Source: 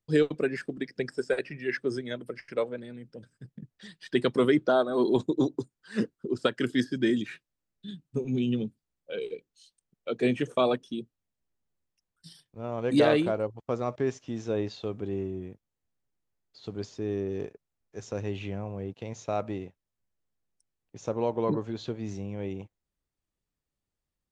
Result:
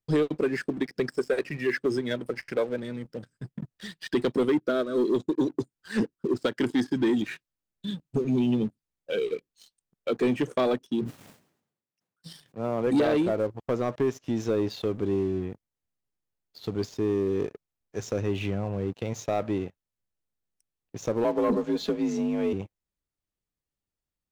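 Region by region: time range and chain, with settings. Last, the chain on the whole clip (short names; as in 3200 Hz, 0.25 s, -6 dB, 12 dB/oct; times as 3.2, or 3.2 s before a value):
4.43–5.47 Butterworth band-stop 820 Hz, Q 1.7 + upward expander, over -31 dBFS
10.87–12.87 HPF 120 Hz 24 dB/oct + high shelf 3100 Hz -7.5 dB + sustainer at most 71 dB/s
21.24–22.53 comb 5 ms, depth 69% + frequency shift +47 Hz
whole clip: dynamic EQ 310 Hz, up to +4 dB, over -35 dBFS, Q 1.2; compressor 2:1, threshold -32 dBFS; sample leveller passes 2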